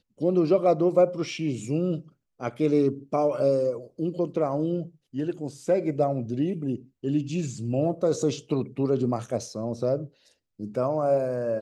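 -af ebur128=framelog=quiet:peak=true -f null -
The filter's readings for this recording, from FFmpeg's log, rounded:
Integrated loudness:
  I:         -26.5 LUFS
  Threshold: -36.7 LUFS
Loudness range:
  LRA:         3.3 LU
  Threshold: -47.1 LUFS
  LRA low:   -28.3 LUFS
  LRA high:  -24.9 LUFS
True peak:
  Peak:       -9.1 dBFS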